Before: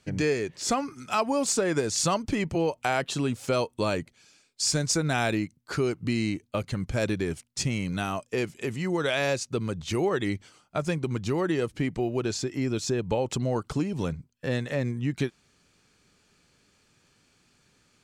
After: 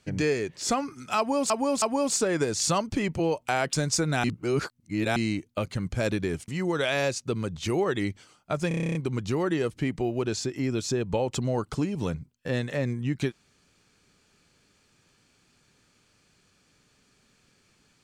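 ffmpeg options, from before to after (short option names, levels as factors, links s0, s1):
-filter_complex "[0:a]asplit=16[s0][s1][s2][s3][s4][s5][s6][s7][s8][s9][s10][s11][s12][s13][s14][s15];[s0]atrim=end=1.502[s16];[s1]atrim=start=1.178:end=1.502[s17];[s2]atrim=start=1.178:end=3.092[s18];[s3]atrim=start=4.698:end=5.212[s19];[s4]atrim=start=5.208:end=6.132,asetpts=PTS-STARTPTS,areverse[s20];[s5]atrim=start=6.128:end=7.452[s21];[s6]atrim=start=8.728:end=10.962[s22];[s7]atrim=start=10.928:end=10.962[s23];[s8]atrim=start=10.928:end=10.962[s24];[s9]atrim=start=10.928:end=10.962[s25];[s10]atrim=start=10.928:end=10.962[s26];[s11]atrim=start=10.928:end=10.962[s27];[s12]atrim=start=10.928:end=10.962[s28];[s13]atrim=start=10.928:end=10.962[s29];[s14]atrim=start=10.928:end=10.962[s30];[s15]atrim=start=10.928[s31];[s16][s17]acrossfade=d=0.004:c1=hsin:c2=hsin[s32];[s32][s18]acrossfade=d=0.004:c1=hsin:c2=hsin[s33];[s33][s19]acrossfade=d=0.004:c1=hsin:c2=hsin[s34];[s34][s20]acrossfade=d=0.004:c1=hsin:c2=hsin[s35];[s35][s21]acrossfade=d=0.004:c1=hsin:c2=hsin[s36];[s36][s22]acrossfade=d=0.004:c1=hsin:c2=hsin[s37];[s37][s23]acrossfade=d=0.004:c1=hsin:c2=hsin[s38];[s38][s24]acrossfade=d=0.004:c1=hsin:c2=hsin[s39];[s39][s25]acrossfade=d=0.004:c1=hsin:c2=hsin[s40];[s40][s26]acrossfade=d=0.004:c1=hsin:c2=hsin[s41];[s41][s27]acrossfade=d=0.004:c1=hsin:c2=hsin[s42];[s42][s28]acrossfade=d=0.004:c1=hsin:c2=hsin[s43];[s43][s29]acrossfade=d=0.004:c1=hsin:c2=hsin[s44];[s44][s30]acrossfade=d=0.004:c1=hsin:c2=hsin[s45];[s45][s31]acrossfade=d=0.004:c1=hsin:c2=hsin"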